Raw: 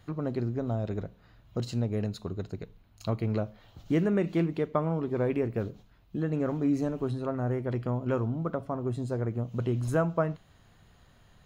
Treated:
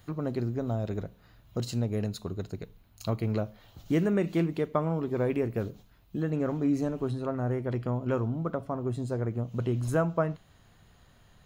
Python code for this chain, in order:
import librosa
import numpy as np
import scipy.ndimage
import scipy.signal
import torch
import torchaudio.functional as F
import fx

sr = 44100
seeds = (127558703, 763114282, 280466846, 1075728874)

y = fx.high_shelf(x, sr, hz=7600.0, db=fx.steps((0.0, 11.5), (6.3, 4.0)))